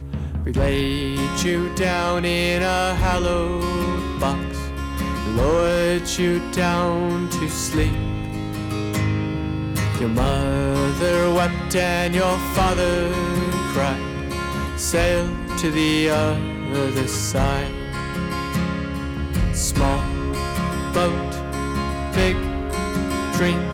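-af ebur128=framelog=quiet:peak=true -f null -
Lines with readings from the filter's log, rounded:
Integrated loudness:
  I:         -21.8 LUFS
  Threshold: -31.8 LUFS
Loudness range:
  LRA:         3.1 LU
  Threshold: -41.8 LUFS
  LRA low:   -23.3 LUFS
  LRA high:  -20.1 LUFS
True peak:
  Peak:      -11.3 dBFS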